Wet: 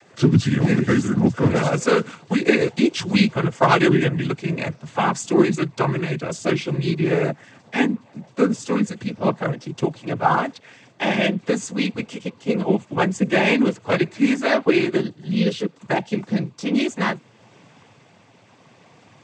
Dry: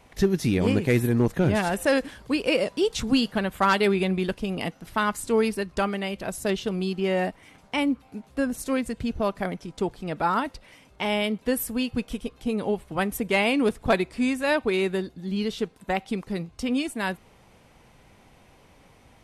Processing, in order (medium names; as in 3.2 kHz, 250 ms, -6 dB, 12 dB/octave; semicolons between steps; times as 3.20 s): pitch bend over the whole clip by -4.5 st ending unshifted; noise-vocoded speech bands 16; trim +7 dB